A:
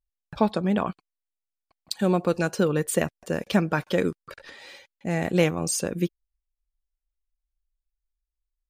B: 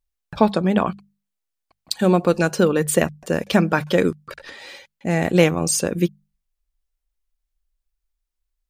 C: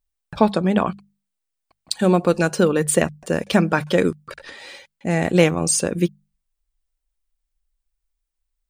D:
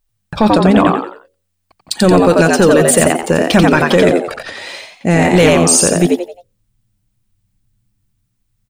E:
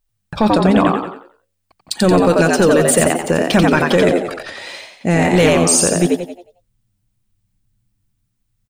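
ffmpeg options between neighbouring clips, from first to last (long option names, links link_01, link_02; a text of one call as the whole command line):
ffmpeg -i in.wav -af "bandreject=frequency=50:width_type=h:width=6,bandreject=frequency=100:width_type=h:width=6,bandreject=frequency=150:width_type=h:width=6,bandreject=frequency=200:width_type=h:width=6,volume=6dB" out.wav
ffmpeg -i in.wav -af "aexciter=amount=1:drive=3.5:freq=8200" out.wav
ffmpeg -i in.wav -filter_complex "[0:a]asplit=5[link_01][link_02][link_03][link_04][link_05];[link_02]adelay=88,afreqshift=89,volume=-4dB[link_06];[link_03]adelay=176,afreqshift=178,volume=-13.6dB[link_07];[link_04]adelay=264,afreqshift=267,volume=-23.3dB[link_08];[link_05]adelay=352,afreqshift=356,volume=-32.9dB[link_09];[link_01][link_06][link_07][link_08][link_09]amix=inputs=5:normalize=0,apsyclip=12.5dB,volume=-3dB" out.wav
ffmpeg -i in.wav -af "aecho=1:1:184:0.168,volume=-3dB" out.wav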